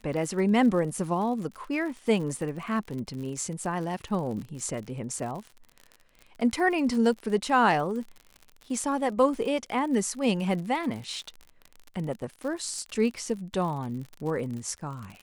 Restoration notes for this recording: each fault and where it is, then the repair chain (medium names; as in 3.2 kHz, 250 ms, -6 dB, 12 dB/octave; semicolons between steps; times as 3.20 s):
crackle 58 per s -35 dBFS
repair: de-click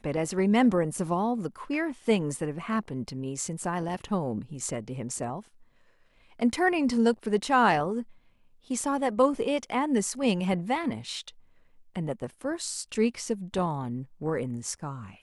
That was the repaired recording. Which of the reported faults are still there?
nothing left